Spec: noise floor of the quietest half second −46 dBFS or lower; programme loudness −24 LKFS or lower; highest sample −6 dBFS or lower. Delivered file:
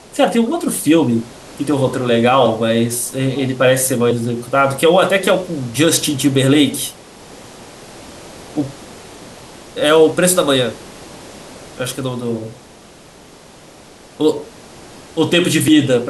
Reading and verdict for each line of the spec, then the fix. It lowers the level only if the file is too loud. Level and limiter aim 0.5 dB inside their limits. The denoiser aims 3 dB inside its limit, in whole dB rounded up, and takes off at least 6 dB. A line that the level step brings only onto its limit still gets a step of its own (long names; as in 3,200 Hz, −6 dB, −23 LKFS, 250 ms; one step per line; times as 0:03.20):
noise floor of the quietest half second −42 dBFS: out of spec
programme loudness −15.5 LKFS: out of spec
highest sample −1.5 dBFS: out of spec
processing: level −9 dB